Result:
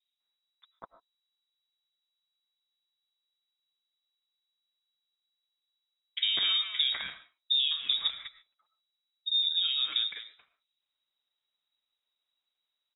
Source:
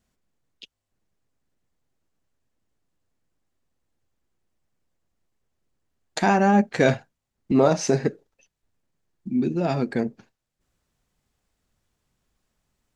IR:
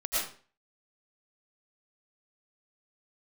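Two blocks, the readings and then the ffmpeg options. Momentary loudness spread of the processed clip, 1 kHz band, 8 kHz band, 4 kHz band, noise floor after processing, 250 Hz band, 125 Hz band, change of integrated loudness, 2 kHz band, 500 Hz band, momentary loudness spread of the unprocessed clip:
16 LU, −25.0 dB, below −40 dB, +15.5 dB, below −85 dBFS, below −40 dB, below −35 dB, −4.5 dB, −10.0 dB, below −35 dB, 11 LU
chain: -filter_complex "[0:a]agate=range=-10dB:threshold=-53dB:ratio=16:detection=peak,acompressor=threshold=-24dB:ratio=6,aeval=exprs='0.178*(abs(mod(val(0)/0.178+3,4)-2)-1)':channel_layout=same,lowpass=frequency=3300:width_type=q:width=0.5098,lowpass=frequency=3300:width_type=q:width=0.6013,lowpass=frequency=3300:width_type=q:width=0.9,lowpass=frequency=3300:width_type=q:width=2.563,afreqshift=-3900,acrossover=split=2300[link_01][link_02];[link_01]adelay=200[link_03];[link_03][link_02]amix=inputs=2:normalize=0,asplit=2[link_04][link_05];[1:a]atrim=start_sample=2205,afade=type=out:start_time=0.2:duration=0.01,atrim=end_sample=9261,highshelf=frequency=3900:gain=-11.5[link_06];[link_05][link_06]afir=irnorm=-1:irlink=0,volume=-17.5dB[link_07];[link_04][link_07]amix=inputs=2:normalize=0"

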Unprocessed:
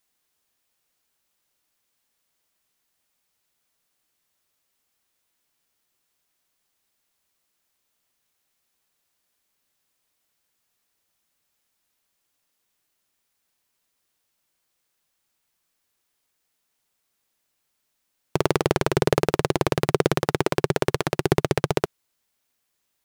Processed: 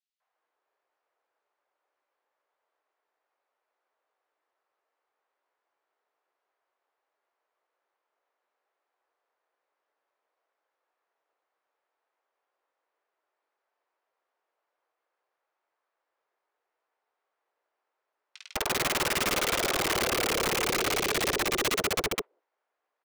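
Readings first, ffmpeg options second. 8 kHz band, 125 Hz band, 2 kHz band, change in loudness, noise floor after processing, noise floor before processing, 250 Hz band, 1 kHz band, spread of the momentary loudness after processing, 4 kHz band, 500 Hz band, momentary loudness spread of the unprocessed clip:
+6.0 dB, −15.0 dB, +2.0 dB, −3.0 dB, −85 dBFS, −76 dBFS, −9.5 dB, −3.5 dB, 6 LU, +4.0 dB, −8.5 dB, 4 LU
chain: -filter_complex "[0:a]highpass=frequency=450:width=0.5412,highpass=frequency=450:width=1.3066,agate=range=-19dB:threshold=-51dB:ratio=16:detection=peak,tiltshelf=frequency=1100:gain=9.5,alimiter=limit=-8.5dB:level=0:latency=1:release=85,asplit=2[link_01][link_02];[link_02]highpass=frequency=720:poles=1,volume=32dB,asoftclip=type=tanh:threshold=-8.5dB[link_03];[link_01][link_03]amix=inputs=2:normalize=0,lowpass=frequency=1700:poles=1,volume=-6dB,adynamicsmooth=sensitivity=0.5:basefreq=4600,asplit=2[link_04][link_05];[link_05]adelay=19,volume=-13dB[link_06];[link_04][link_06]amix=inputs=2:normalize=0,acrossover=split=570|3200[link_07][link_08][link_09];[link_08]adelay=200[link_10];[link_07]adelay=340[link_11];[link_11][link_10][link_09]amix=inputs=3:normalize=0,aeval=exprs='(mod(11.2*val(0)+1,2)-1)/11.2':channel_layout=same"

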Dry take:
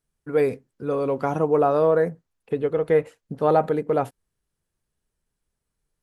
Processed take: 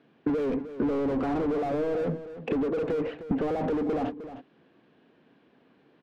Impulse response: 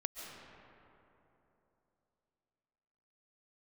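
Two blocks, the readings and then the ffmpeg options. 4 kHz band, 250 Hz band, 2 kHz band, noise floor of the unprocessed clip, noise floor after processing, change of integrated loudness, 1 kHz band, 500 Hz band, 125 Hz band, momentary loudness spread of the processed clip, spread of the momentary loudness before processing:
can't be measured, +1.5 dB, −6.0 dB, −82 dBFS, −63 dBFS, −6.5 dB, −9.5 dB, −8.0 dB, −6.0 dB, 6 LU, 9 LU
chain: -filter_complex "[0:a]alimiter=limit=-13dB:level=0:latency=1:release=61,highpass=240,equalizer=frequency=270:width_type=q:width=4:gain=6,equalizer=frequency=410:width_type=q:width=4:gain=-5,equalizer=frequency=580:width_type=q:width=4:gain=-6,equalizer=frequency=910:width_type=q:width=4:gain=-7,equalizer=frequency=1300:width_type=q:width=4:gain=-8,equalizer=frequency=2000:width_type=q:width=4:gain=-5,lowpass=frequency=3400:width=0.5412,lowpass=frequency=3400:width=1.3066,asplit=2[link_01][link_02];[link_02]highpass=frequency=720:poles=1,volume=36dB,asoftclip=type=tanh:threshold=-15.5dB[link_03];[link_01][link_03]amix=inputs=2:normalize=0,lowpass=frequency=1600:poles=1,volume=-6dB,acompressor=threshold=-33dB:ratio=12,tiltshelf=frequency=750:gain=6,aecho=1:1:308:0.237,volume=4dB"

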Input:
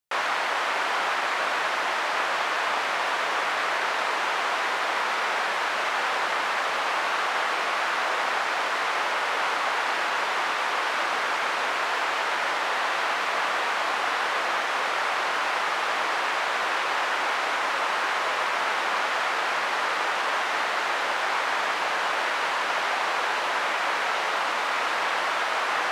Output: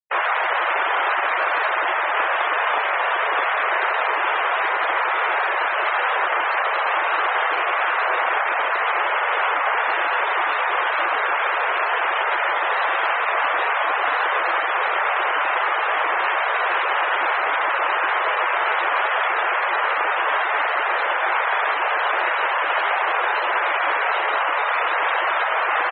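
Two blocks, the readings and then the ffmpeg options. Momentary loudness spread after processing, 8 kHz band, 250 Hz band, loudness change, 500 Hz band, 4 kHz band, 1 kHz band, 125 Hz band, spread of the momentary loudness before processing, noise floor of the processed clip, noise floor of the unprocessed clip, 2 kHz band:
1 LU, below −40 dB, −1.0 dB, +5.0 dB, +5.0 dB, −0.5 dB, +5.5 dB, can't be measured, 0 LU, −22 dBFS, −27 dBFS, +5.5 dB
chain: -filter_complex "[0:a]highpass=85,asplit=2[link_01][link_02];[link_02]adelay=14,volume=-14dB[link_03];[link_01][link_03]amix=inputs=2:normalize=0,afftfilt=real='re*gte(hypot(re,im),0.0501)':imag='im*gte(hypot(re,im),0.0501)':win_size=1024:overlap=0.75,volume=5.5dB"

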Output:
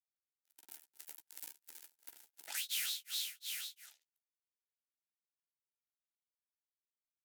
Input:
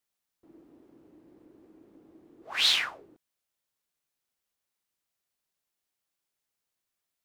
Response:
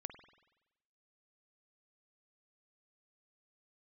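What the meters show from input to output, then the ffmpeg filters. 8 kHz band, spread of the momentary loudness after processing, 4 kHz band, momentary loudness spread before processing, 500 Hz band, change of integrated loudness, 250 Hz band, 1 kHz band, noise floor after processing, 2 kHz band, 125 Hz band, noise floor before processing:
0.0 dB, 19 LU, −12.5 dB, 13 LU, below −15 dB, −14.5 dB, below −20 dB, −18.0 dB, below −85 dBFS, −13.5 dB, can't be measured, below −85 dBFS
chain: -filter_complex "[0:a]aeval=exprs='val(0)+0.5*0.0188*sgn(val(0))':channel_layout=same,bandreject=frequency=50:width_type=h:width=6,bandreject=frequency=100:width_type=h:width=6,bandreject=frequency=150:width_type=h:width=6,bandreject=frequency=200:width_type=h:width=6,bandreject=frequency=250:width_type=h:width=6,bandreject=frequency=300:width_type=h:width=6,asplit=2[link_01][link_02];[1:a]atrim=start_sample=2205[link_03];[link_02][link_03]afir=irnorm=-1:irlink=0,volume=-7dB[link_04];[link_01][link_04]amix=inputs=2:normalize=0,acrusher=bits=4:mix=0:aa=0.5,aecho=1:1:250|500|750|1000:0.355|0.142|0.0568|0.0227,tremolo=f=2.8:d=1,equalizer=frequency=12000:width_type=o:width=2.1:gain=9.5,asplit=2[link_05][link_06];[link_06]adelay=13,volume=-8.5dB[link_07];[link_05][link_07]amix=inputs=2:normalize=0,acompressor=threshold=-49dB:ratio=6,asuperstop=centerf=1100:order=4:qfactor=3.6,aderivative,volume=15.5dB"

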